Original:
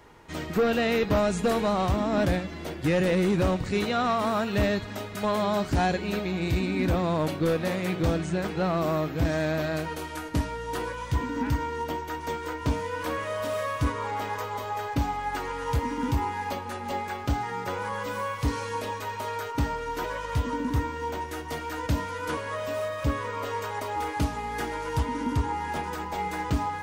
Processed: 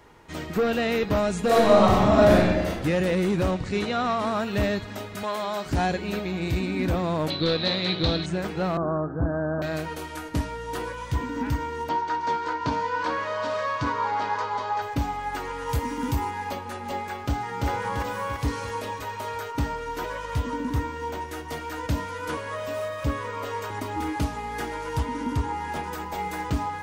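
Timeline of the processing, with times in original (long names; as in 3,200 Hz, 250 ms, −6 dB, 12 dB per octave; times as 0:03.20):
0:01.45–0:02.67: thrown reverb, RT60 1.2 s, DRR −6.5 dB
0:03.51–0:04.40: low-pass filter 8,600 Hz
0:05.23–0:05.66: high-pass filter 630 Hz 6 dB per octave
0:07.30–0:08.26: low-pass with resonance 4,000 Hz, resonance Q 16
0:08.77–0:09.62: Butterworth low-pass 1,600 Hz 96 dB per octave
0:11.89–0:14.82: loudspeaker in its box 120–6,500 Hz, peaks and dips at 930 Hz +9 dB, 1,500 Hz +6 dB, 4,400 Hz +6 dB
0:15.69–0:16.31: high-shelf EQ 7,300 Hz +9.5 dB
0:17.26–0:17.68: delay throw 340 ms, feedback 55%, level −1 dB
0:23.70–0:24.16: low shelf with overshoot 390 Hz +6 dB, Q 3
0:25.92–0:26.48: high-shelf EQ 12,000 Hz +8 dB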